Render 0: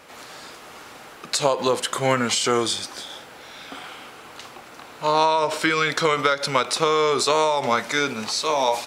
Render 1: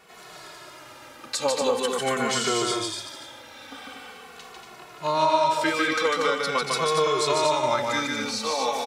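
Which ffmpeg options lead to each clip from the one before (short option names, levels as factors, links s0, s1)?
-filter_complex "[0:a]asplit=2[s0][s1];[s1]aecho=0:1:148.7|236.2:0.708|0.562[s2];[s0][s2]amix=inputs=2:normalize=0,asplit=2[s3][s4];[s4]adelay=2.3,afreqshift=-0.44[s5];[s3][s5]amix=inputs=2:normalize=1,volume=0.75"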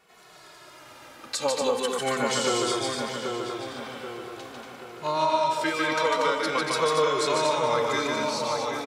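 -filter_complex "[0:a]dynaudnorm=f=200:g=7:m=2,asplit=2[s0][s1];[s1]adelay=782,lowpass=f=1900:p=1,volume=0.631,asplit=2[s2][s3];[s3]adelay=782,lowpass=f=1900:p=1,volume=0.48,asplit=2[s4][s5];[s5]adelay=782,lowpass=f=1900:p=1,volume=0.48,asplit=2[s6][s7];[s7]adelay=782,lowpass=f=1900:p=1,volume=0.48,asplit=2[s8][s9];[s9]adelay=782,lowpass=f=1900:p=1,volume=0.48,asplit=2[s10][s11];[s11]adelay=782,lowpass=f=1900:p=1,volume=0.48[s12];[s0][s2][s4][s6][s8][s10][s12]amix=inputs=7:normalize=0,volume=0.422"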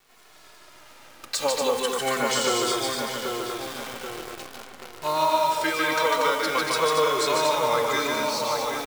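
-af "lowshelf=f=330:g=-5.5,acrusher=bits=7:dc=4:mix=0:aa=0.000001,volume=1.33"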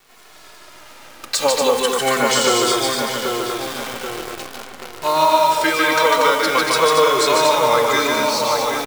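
-af "bandreject=f=50:t=h:w=6,bandreject=f=100:t=h:w=6,bandreject=f=150:t=h:w=6,volume=2.37"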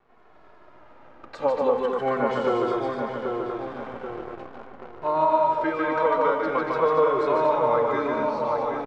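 -af "lowpass=1100,volume=0.596"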